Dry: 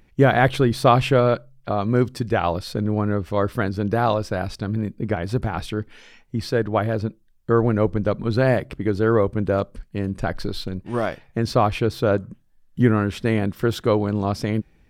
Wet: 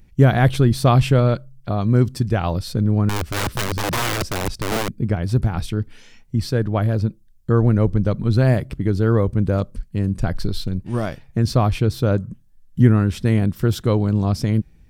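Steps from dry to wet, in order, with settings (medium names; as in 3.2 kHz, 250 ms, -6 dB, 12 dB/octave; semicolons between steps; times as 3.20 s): tone controls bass +11 dB, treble +8 dB; 3.09–4.92 s: integer overflow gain 13 dB; trim -3.5 dB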